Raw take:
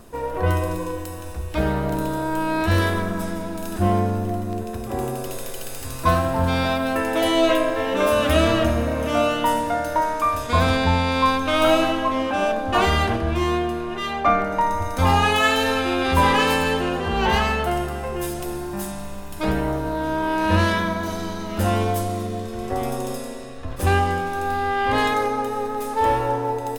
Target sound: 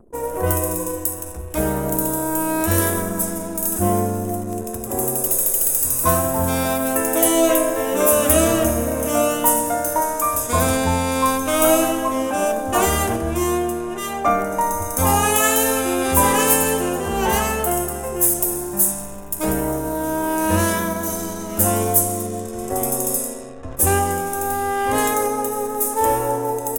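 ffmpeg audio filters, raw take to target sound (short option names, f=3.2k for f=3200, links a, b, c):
-af "equalizer=f=420:t=o:w=2.7:g=6,anlmdn=1,aexciter=amount=11.5:drive=5.7:freq=6.3k,volume=-3.5dB"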